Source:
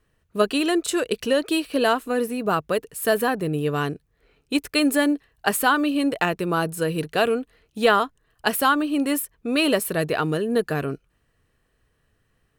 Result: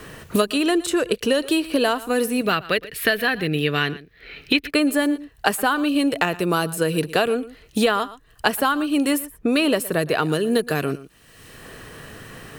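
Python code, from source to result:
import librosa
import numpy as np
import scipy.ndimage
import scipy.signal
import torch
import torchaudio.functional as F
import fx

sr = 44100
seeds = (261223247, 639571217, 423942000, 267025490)

y = fx.graphic_eq(x, sr, hz=(125, 250, 500, 1000, 2000, 4000, 8000), db=(-3, -4, -4, -9, 9, 9, -11), at=(2.41, 4.7))
y = y + 10.0 ** (-20.0 / 20.0) * np.pad(y, (int(116 * sr / 1000.0), 0))[:len(y)]
y = fx.band_squash(y, sr, depth_pct=100)
y = y * 10.0 ** (1.0 / 20.0)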